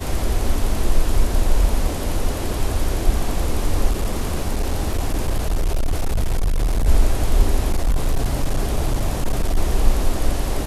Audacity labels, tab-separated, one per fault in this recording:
3.900000	6.880000	clipping −15 dBFS
7.700000	9.570000	clipping −13.5 dBFS

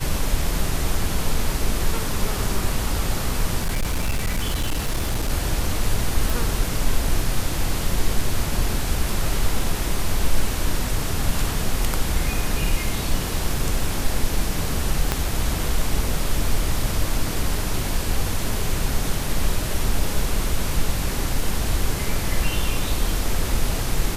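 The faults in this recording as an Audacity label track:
3.590000	5.310000	clipping −18 dBFS
6.300000	6.300000	click
15.120000	15.120000	click −5 dBFS

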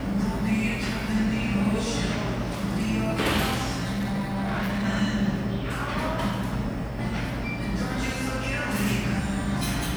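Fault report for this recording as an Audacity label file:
3.910000	4.860000	clipping −24 dBFS

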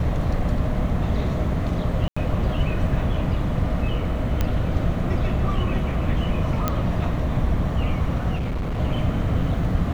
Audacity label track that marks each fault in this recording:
2.080000	2.170000	drop-out 85 ms
4.410000	4.410000	click −9 dBFS
6.680000	6.680000	click −7 dBFS
8.350000	8.790000	clipping −22.5 dBFS

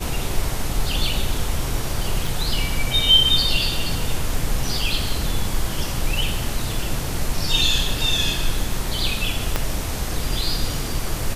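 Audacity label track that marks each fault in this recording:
2.270000	2.270000	drop-out 3.3 ms
9.560000	9.560000	click −5 dBFS

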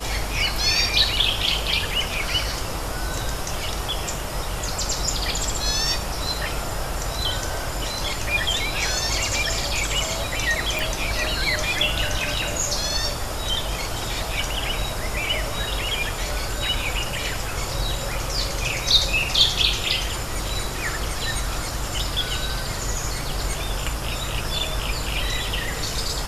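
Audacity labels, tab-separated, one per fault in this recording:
10.790000	10.790000	click

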